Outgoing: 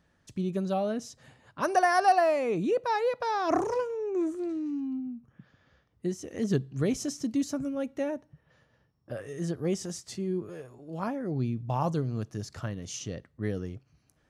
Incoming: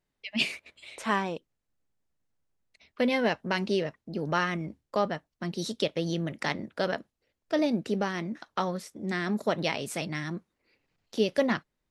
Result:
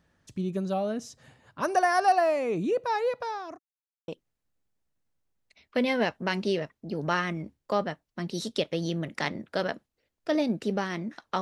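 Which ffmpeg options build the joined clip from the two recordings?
ffmpeg -i cue0.wav -i cue1.wav -filter_complex "[0:a]apad=whole_dur=11.41,atrim=end=11.41,asplit=2[link_01][link_02];[link_01]atrim=end=3.59,asetpts=PTS-STARTPTS,afade=type=out:start_time=3.13:duration=0.46[link_03];[link_02]atrim=start=3.59:end=4.08,asetpts=PTS-STARTPTS,volume=0[link_04];[1:a]atrim=start=1.32:end=8.65,asetpts=PTS-STARTPTS,afade=type=in:duration=0.004:curve=hsin[link_05];[link_03][link_04][link_05]concat=n=3:v=0:a=1" out.wav

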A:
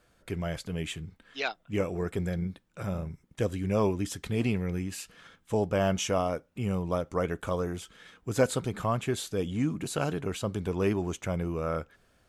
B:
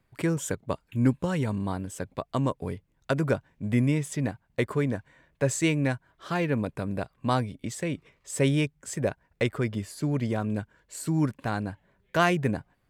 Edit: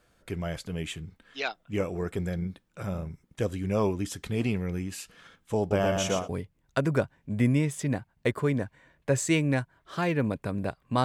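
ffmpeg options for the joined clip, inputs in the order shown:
ffmpeg -i cue0.wav -i cue1.wav -filter_complex "[0:a]asettb=1/sr,asplit=3[link_01][link_02][link_03];[link_01]atrim=end=5.594[link_04];[link_02]atrim=start=5.59:end=6.29,asetpts=PTS-STARTPTS,afade=type=in:duration=0.004:curve=qsin,afade=type=out:start_time=0.696:duration=0.004:curve=qsin,aecho=1:1:117|234|351|468|585:0.631|0.246|0.096|0.0374|0.0146,atrim=end_sample=30870[link_05];[link_03]atrim=start=6.286[link_06];[link_04][link_05]acrossfade=duration=0.004:curve1=hsin:curve2=qsin[link_07];[link_07][link_06]acrossfade=duration=0.004:curve1=qsin:curve2=hsin,apad=whole_dur=11.04,atrim=end=11.04,atrim=end=6.29,asetpts=PTS-STARTPTS[link_08];[1:a]atrim=start=2.46:end=7.37,asetpts=PTS-STARTPTS[link_09];[link_08][link_09]acrossfade=duration=0.16:curve1=tri:curve2=tri" out.wav

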